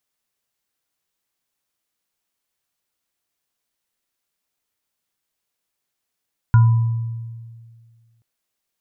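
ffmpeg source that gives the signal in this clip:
ffmpeg -f lavfi -i "aevalsrc='0.447*pow(10,-3*t/1.94)*sin(2*PI*115*t)+0.0631*pow(10,-3*t/0.95)*sin(2*PI*992*t)+0.0631*pow(10,-3*t/0.23)*sin(2*PI*1420*t)':duration=1.68:sample_rate=44100" out.wav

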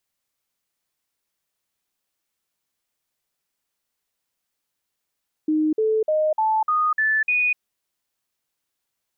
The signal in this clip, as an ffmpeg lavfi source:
ffmpeg -f lavfi -i "aevalsrc='0.141*clip(min(mod(t,0.3),0.25-mod(t,0.3))/0.005,0,1)*sin(2*PI*309*pow(2,floor(t/0.3)/2)*mod(t,0.3))':duration=2.1:sample_rate=44100" out.wav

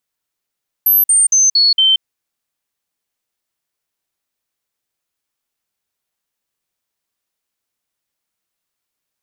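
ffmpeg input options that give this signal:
ffmpeg -f lavfi -i "aevalsrc='0.398*clip(min(mod(t,0.23),0.18-mod(t,0.23))/0.005,0,1)*sin(2*PI*12400*pow(2,-floor(t/0.23)/2)*mod(t,0.23))':duration=1.15:sample_rate=44100" out.wav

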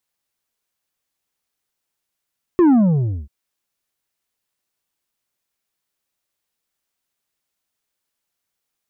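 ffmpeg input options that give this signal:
ffmpeg -f lavfi -i "aevalsrc='0.316*clip((0.69-t)/0.58,0,1)*tanh(2*sin(2*PI*370*0.69/log(65/370)*(exp(log(65/370)*t/0.69)-1)))/tanh(2)':duration=0.69:sample_rate=44100" out.wav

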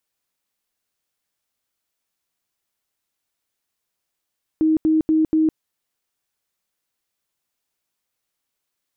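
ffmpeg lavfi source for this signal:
ffmpeg -f lavfi -i "aevalsrc='0.211*sin(2*PI*315*mod(t,0.24))*lt(mod(t,0.24),50/315)':duration=0.96:sample_rate=44100" out.wav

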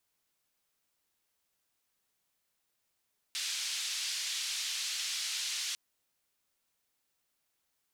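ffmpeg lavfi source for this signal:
ffmpeg -f lavfi -i "anoisesrc=color=white:duration=2.4:sample_rate=44100:seed=1,highpass=frequency=3200,lowpass=frequency=5100,volume=-21.3dB" out.wav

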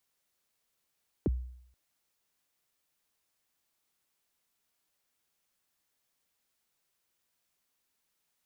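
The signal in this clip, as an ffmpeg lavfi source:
ffmpeg -f lavfi -i "aevalsrc='0.075*pow(10,-3*t/0.68)*sin(2*PI*(470*0.028/log(62/470)*(exp(log(62/470)*min(t,0.028)/0.028)-1)+62*max(t-0.028,0)))':duration=0.48:sample_rate=44100" out.wav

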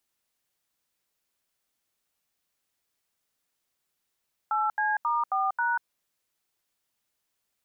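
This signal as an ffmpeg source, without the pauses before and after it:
ffmpeg -f lavfi -i "aevalsrc='0.0501*clip(min(mod(t,0.269),0.19-mod(t,0.269))/0.002,0,1)*(eq(floor(t/0.269),0)*(sin(2*PI*852*mod(t,0.269))+sin(2*PI*1336*mod(t,0.269)))+eq(floor(t/0.269),1)*(sin(2*PI*852*mod(t,0.269))+sin(2*PI*1633*mod(t,0.269)))+eq(floor(t/0.269),2)*(sin(2*PI*941*mod(t,0.269))+sin(2*PI*1209*mod(t,0.269)))+eq(floor(t/0.269),3)*(sin(2*PI*770*mod(t,0.269))+sin(2*PI*1209*mod(t,0.269)))+eq(floor(t/0.269),4)*(sin(2*PI*941*mod(t,0.269))+sin(2*PI*1477*mod(t,0.269))))':duration=1.345:sample_rate=44100" out.wav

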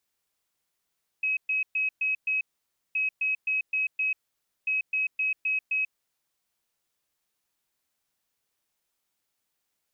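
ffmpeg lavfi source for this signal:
ffmpeg -f lavfi -i "aevalsrc='0.0668*sin(2*PI*2550*t)*clip(min(mod(mod(t,1.72),0.26),0.14-mod(mod(t,1.72),0.26))/0.005,0,1)*lt(mod(t,1.72),1.3)':duration=5.16:sample_rate=44100" out.wav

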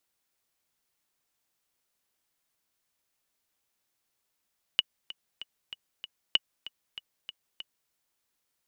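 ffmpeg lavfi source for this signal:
ffmpeg -f lavfi -i "aevalsrc='pow(10,(-8.5-17.5*gte(mod(t,5*60/192),60/192))/20)*sin(2*PI*2930*mod(t,60/192))*exp(-6.91*mod(t,60/192)/0.03)':duration=3.12:sample_rate=44100" out.wav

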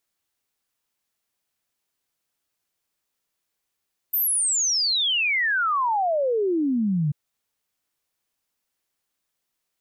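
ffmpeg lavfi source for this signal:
ffmpeg -f lavfi -i "aevalsrc='0.106*clip(min(t,2.99-t)/0.01,0,1)*sin(2*PI*14000*2.99/log(140/14000)*(exp(log(140/14000)*t/2.99)-1))':duration=2.99:sample_rate=44100" out.wav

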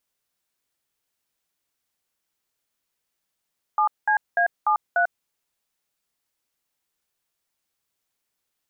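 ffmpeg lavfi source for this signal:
ffmpeg -f lavfi -i "aevalsrc='0.106*clip(min(mod(t,0.295),0.095-mod(t,0.295))/0.002,0,1)*(eq(floor(t/0.295),0)*(sin(2*PI*852*mod(t,0.295))+sin(2*PI*1209*mod(t,0.295)))+eq(floor(t/0.295),1)*(sin(2*PI*852*mod(t,0.295))+sin(2*PI*1633*mod(t,0.295)))+eq(floor(t/0.295),2)*(sin(2*PI*697*mod(t,0.295))+sin(2*PI*1633*mod(t,0.295)))+eq(floor(t/0.295),3)*(sin(2*PI*852*mod(t,0.295))+sin(2*PI*1209*mod(t,0.295)))+eq(floor(t/0.295),4)*(sin(2*PI*697*mod(t,0.295))+sin(2*PI*1477*mod(t,0.295))))':duration=1.475:sample_rate=44100" out.wav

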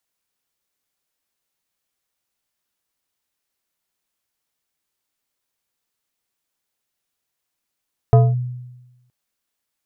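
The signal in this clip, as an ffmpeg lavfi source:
ffmpeg -f lavfi -i "aevalsrc='0.531*pow(10,-3*t/1.08)*sin(2*PI*124*t+0.7*clip(1-t/0.22,0,1)*sin(2*PI*4.54*124*t))':duration=0.97:sample_rate=44100" out.wav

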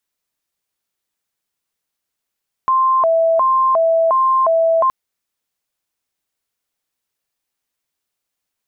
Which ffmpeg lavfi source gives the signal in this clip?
ffmpeg -f lavfi -i "aevalsrc='0.282*sin(2*PI*(853.5*t+196.5/1.4*(0.5-abs(mod(1.4*t,1)-0.5))))':duration=2.22:sample_rate=44100" out.wav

